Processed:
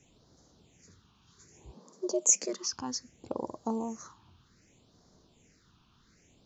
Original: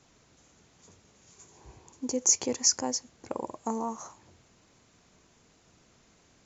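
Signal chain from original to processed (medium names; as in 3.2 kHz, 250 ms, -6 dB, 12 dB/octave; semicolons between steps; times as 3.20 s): phase shifter stages 6, 0.64 Hz, lowest notch 520–2500 Hz; 1.74–2.73 s: frequency shift +110 Hz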